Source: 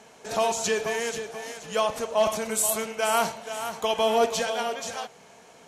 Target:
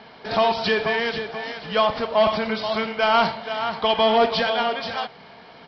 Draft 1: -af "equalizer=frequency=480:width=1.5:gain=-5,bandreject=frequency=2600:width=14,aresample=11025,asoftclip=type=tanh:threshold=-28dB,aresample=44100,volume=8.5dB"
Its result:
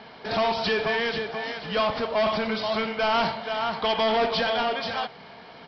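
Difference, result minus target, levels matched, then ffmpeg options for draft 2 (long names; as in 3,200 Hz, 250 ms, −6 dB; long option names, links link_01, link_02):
soft clipping: distortion +12 dB
-af "equalizer=frequency=480:width=1.5:gain=-5,bandreject=frequency=2600:width=14,aresample=11025,asoftclip=type=tanh:threshold=-17.5dB,aresample=44100,volume=8.5dB"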